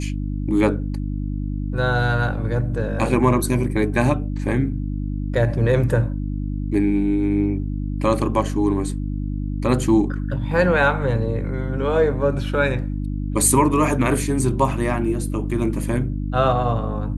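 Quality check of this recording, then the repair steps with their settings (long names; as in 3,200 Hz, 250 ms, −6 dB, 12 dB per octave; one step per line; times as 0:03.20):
mains hum 50 Hz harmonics 6 −25 dBFS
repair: hum removal 50 Hz, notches 6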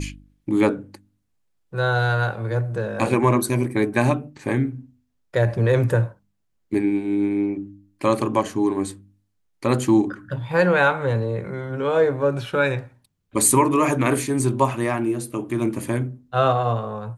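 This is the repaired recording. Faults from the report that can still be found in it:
none of them is left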